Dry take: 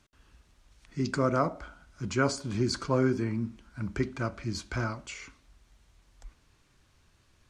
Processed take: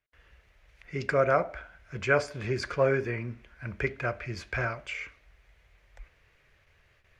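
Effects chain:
noise gate with hold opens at −55 dBFS
graphic EQ with 10 bands 250 Hz −12 dB, 500 Hz +9 dB, 1,000 Hz −4 dB, 2,000 Hz +12 dB, 4,000 Hz −4 dB, 8,000 Hz −11 dB
wrong playback speed 24 fps film run at 25 fps

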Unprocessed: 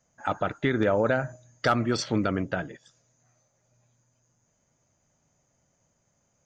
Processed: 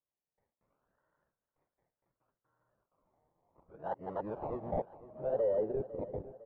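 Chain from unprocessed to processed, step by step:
played backwards from end to start
noise gate with hold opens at −60 dBFS
high-pass filter 160 Hz 12 dB per octave
low-shelf EQ 500 Hz −6 dB
comb filter 1.9 ms, depth 58%
sample-and-hold swept by an LFO 25×, swing 60% 0.68 Hz
soft clipping −22 dBFS, distortion −13 dB
low-pass filter sweep 1,600 Hz → 470 Hz, 0:02.14–0:05.88
repeating echo 504 ms, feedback 54%, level −16 dB
one half of a high-frequency compander decoder only
level −9 dB

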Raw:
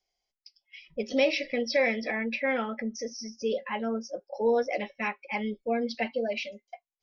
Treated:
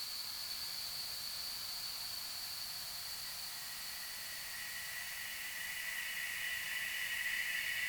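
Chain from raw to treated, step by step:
in parallel at −7.5 dB: bit-depth reduction 8 bits, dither triangular
on the sum: change of speed 0.891×
parametric band 370 Hz −14 dB 1.1 octaves
extreme stretch with random phases 28×, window 0.50 s, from 0:00.52
on a send: delay that swaps between a low-pass and a high-pass 242 ms, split 2,200 Hz, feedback 55%, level −3 dB
on the sum: slew-rate limiting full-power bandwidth 32 Hz
level +8.5 dB

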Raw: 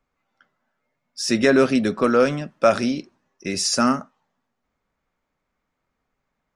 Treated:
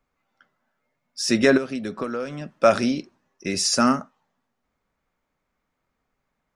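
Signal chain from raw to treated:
0:01.57–0:02.64: downward compressor 12 to 1, threshold −25 dBFS, peak gain reduction 13.5 dB

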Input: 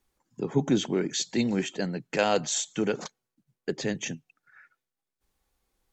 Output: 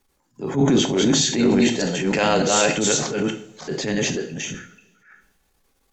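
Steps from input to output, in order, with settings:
delay that plays each chunk backwards 303 ms, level −0.5 dB
coupled-rooms reverb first 0.45 s, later 2.1 s, from −26 dB, DRR 6.5 dB
transient designer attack −9 dB, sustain +4 dB
level +6.5 dB

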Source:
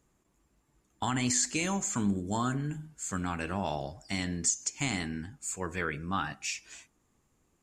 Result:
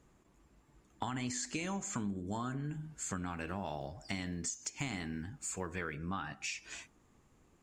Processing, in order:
0:03.30–0:05.95: one scale factor per block 7 bits
high-shelf EQ 6,400 Hz −10.5 dB
downward compressor 4 to 1, threshold −43 dBFS, peak gain reduction 15.5 dB
level +5.5 dB

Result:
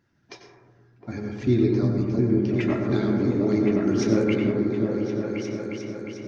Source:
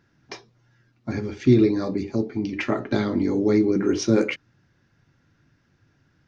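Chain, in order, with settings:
spectral magnitudes quantised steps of 15 dB
on a send: echo whose low-pass opens from repeat to repeat 356 ms, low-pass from 200 Hz, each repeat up 2 octaves, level 0 dB
on the sum: dense smooth reverb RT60 1.3 s, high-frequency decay 0.25×, pre-delay 80 ms, DRR 3 dB
level −5 dB

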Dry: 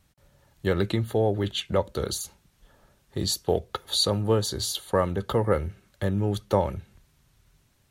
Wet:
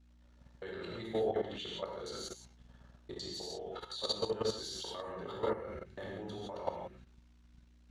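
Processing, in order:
reversed piece by piece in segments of 103 ms
three-way crossover with the lows and the highs turned down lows −13 dB, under 250 Hz, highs −23 dB, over 7,100 Hz
mains-hum notches 50/100/150/200/250/300/350/400/450 Hz
brickwall limiter −18 dBFS, peak gain reduction 7 dB
reverb whose tail is shaped and stops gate 200 ms flat, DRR −2.5 dB
hum with harmonics 60 Hz, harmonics 4, −48 dBFS −5 dB per octave
output level in coarse steps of 12 dB
level −7 dB

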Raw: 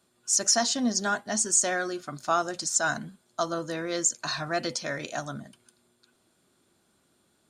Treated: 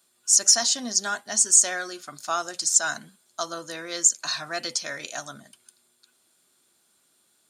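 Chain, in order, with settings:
spectral tilt +3 dB per octave
level −2 dB

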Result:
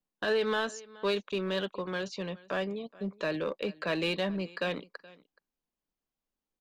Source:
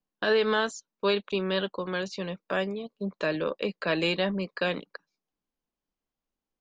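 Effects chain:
single-tap delay 424 ms −23 dB
in parallel at −5 dB: hard clipping −27 dBFS, distortion −7 dB
on the sum: level −6.5 dB

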